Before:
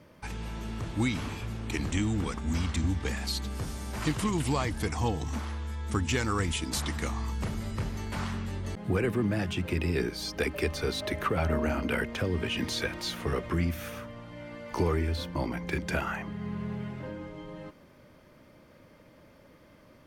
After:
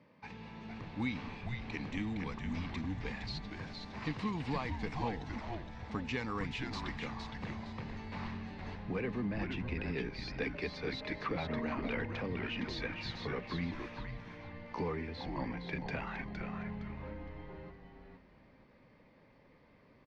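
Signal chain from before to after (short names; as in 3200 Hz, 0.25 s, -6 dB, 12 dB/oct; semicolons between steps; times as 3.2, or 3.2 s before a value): speaker cabinet 170–4000 Hz, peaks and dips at 350 Hz -10 dB, 620 Hz -7 dB, 1400 Hz -10 dB, 3200 Hz -8 dB; frequency-shifting echo 0.463 s, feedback 31%, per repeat -130 Hz, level -5 dB; gain -4 dB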